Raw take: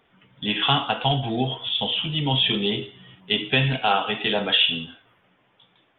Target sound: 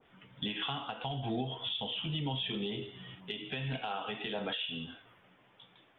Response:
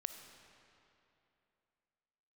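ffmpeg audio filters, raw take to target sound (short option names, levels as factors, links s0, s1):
-af "acompressor=threshold=0.0282:ratio=4,alimiter=limit=0.075:level=0:latency=1:release=223,adynamicequalizer=threshold=0.00398:dfrequency=1500:dqfactor=0.7:tfrequency=1500:tqfactor=0.7:attack=5:release=100:ratio=0.375:range=1.5:mode=cutabove:tftype=highshelf,volume=0.891"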